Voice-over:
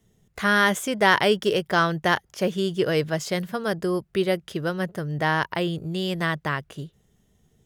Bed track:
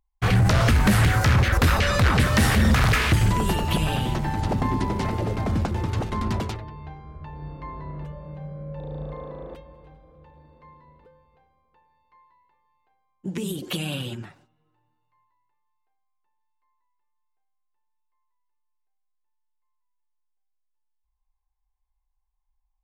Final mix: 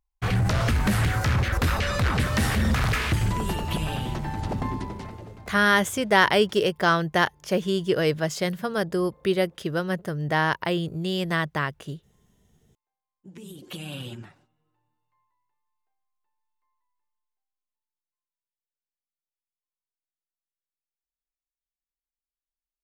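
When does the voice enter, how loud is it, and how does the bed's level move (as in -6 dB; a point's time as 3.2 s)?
5.10 s, 0.0 dB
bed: 4.67 s -4.5 dB
5.58 s -22 dB
12.82 s -22 dB
14.05 s -4.5 dB
16.98 s -4.5 dB
18.32 s -25 dB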